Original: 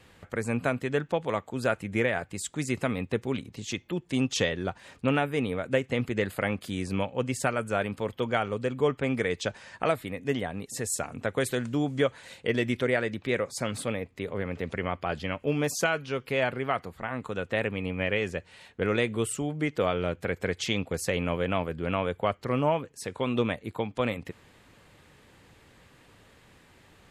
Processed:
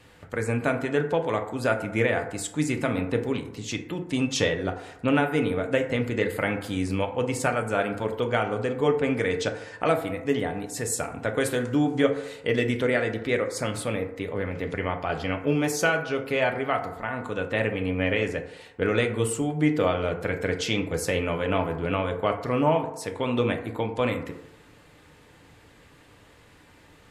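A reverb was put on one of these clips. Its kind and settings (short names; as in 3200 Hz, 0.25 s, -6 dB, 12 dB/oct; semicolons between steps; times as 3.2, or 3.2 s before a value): FDN reverb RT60 0.87 s, low-frequency decay 0.75×, high-frequency decay 0.35×, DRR 4 dB; gain +1.5 dB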